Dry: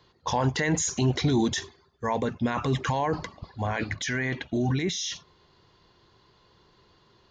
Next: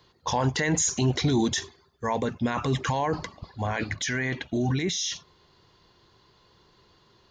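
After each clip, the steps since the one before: high shelf 6100 Hz +6 dB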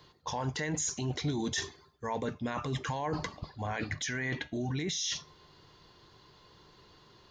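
reverse; compressor 4:1, threshold -34 dBFS, peak gain reduction 12.5 dB; reverse; resonator 150 Hz, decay 0.25 s, harmonics all, mix 50%; gain +6 dB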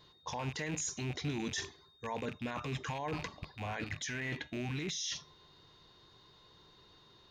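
rattling part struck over -42 dBFS, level -30 dBFS; vibrato 0.53 Hz 11 cents; whine 3700 Hz -59 dBFS; gain -4.5 dB

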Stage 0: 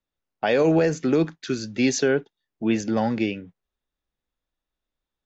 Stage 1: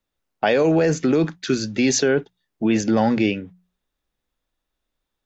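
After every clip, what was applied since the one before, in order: notches 60/120/180 Hz; in parallel at -3 dB: negative-ratio compressor -23 dBFS, ratio -0.5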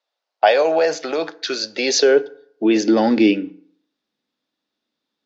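high-pass sweep 650 Hz -> 230 Hz, 1.26–3.67; synth low-pass 4700 Hz, resonance Q 2.4; FDN reverb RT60 0.64 s, low-frequency decay 0.9×, high-frequency decay 0.65×, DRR 15.5 dB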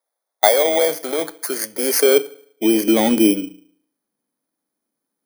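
FFT order left unsorted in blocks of 16 samples

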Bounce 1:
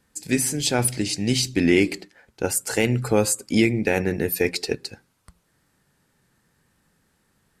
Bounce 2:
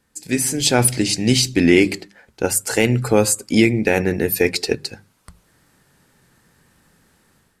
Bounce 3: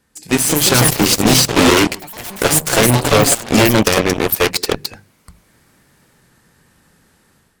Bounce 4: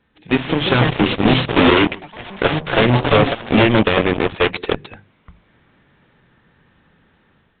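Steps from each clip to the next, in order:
notches 50/100/150/200 Hz; AGC gain up to 9 dB
sine folder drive 11 dB, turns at -1 dBFS; echoes that change speed 0.248 s, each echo +4 st, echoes 3, each echo -6 dB; added harmonics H 7 -13 dB, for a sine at 5 dBFS; gain -7 dB
gain -1 dB; A-law 64 kbps 8000 Hz

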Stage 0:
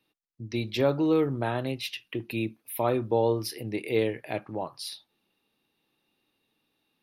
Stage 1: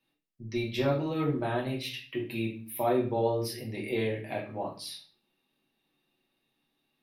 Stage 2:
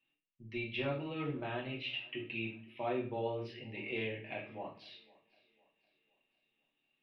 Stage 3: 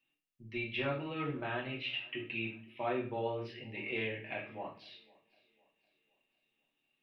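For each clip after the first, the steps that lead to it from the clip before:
reverb RT60 0.40 s, pre-delay 3 ms, DRR -4 dB; gain -7 dB
ladder low-pass 3100 Hz, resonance 65%; notches 50/100 Hz; thinning echo 0.506 s, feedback 43%, high-pass 160 Hz, level -23.5 dB; gain +1.5 dB
dynamic EQ 1500 Hz, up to +6 dB, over -57 dBFS, Q 1.2

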